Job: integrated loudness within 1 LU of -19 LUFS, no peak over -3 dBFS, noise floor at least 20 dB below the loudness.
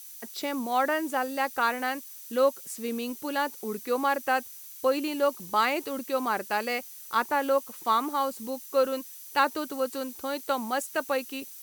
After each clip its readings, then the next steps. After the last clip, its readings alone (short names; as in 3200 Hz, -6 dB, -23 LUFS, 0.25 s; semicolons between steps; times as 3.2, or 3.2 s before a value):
steady tone 6000 Hz; tone level -57 dBFS; noise floor -45 dBFS; noise floor target -49 dBFS; loudness -28.5 LUFS; peak -11.0 dBFS; loudness target -19.0 LUFS
-> notch 6000 Hz, Q 30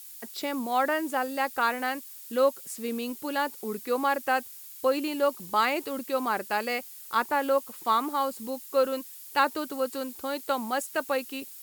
steady tone none; noise floor -45 dBFS; noise floor target -49 dBFS
-> noise print and reduce 6 dB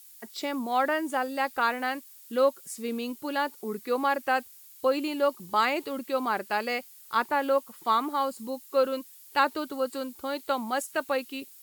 noise floor -51 dBFS; loudness -29.0 LUFS; peak -11.0 dBFS; loudness target -19.0 LUFS
-> gain +10 dB; limiter -3 dBFS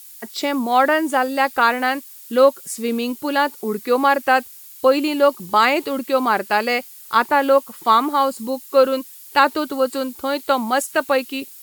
loudness -19.0 LUFS; peak -3.0 dBFS; noise floor -41 dBFS